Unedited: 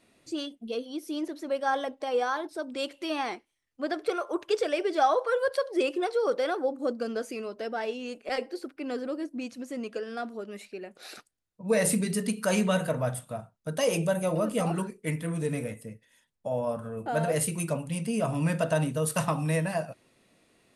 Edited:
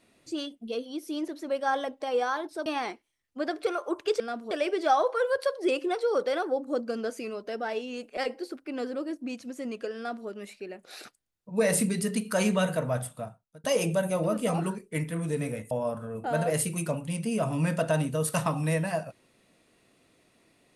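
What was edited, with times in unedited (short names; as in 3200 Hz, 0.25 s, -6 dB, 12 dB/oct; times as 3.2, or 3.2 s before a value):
2.66–3.09 cut
10.09–10.4 copy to 4.63
13.3–13.76 fade out
15.83–16.53 cut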